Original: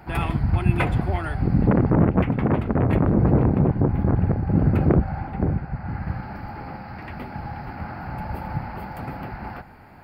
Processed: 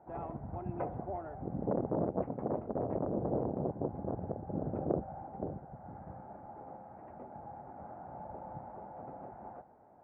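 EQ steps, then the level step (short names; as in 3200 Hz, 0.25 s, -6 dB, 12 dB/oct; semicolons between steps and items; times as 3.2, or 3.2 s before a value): ladder low-pass 760 Hz, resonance 40%; tilt +4.5 dB/oct; 0.0 dB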